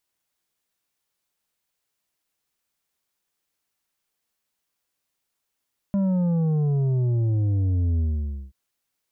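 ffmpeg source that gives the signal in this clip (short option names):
-f lavfi -i "aevalsrc='0.1*clip((2.58-t)/0.53,0,1)*tanh(2.24*sin(2*PI*200*2.58/log(65/200)*(exp(log(65/200)*t/2.58)-1)))/tanh(2.24)':d=2.58:s=44100"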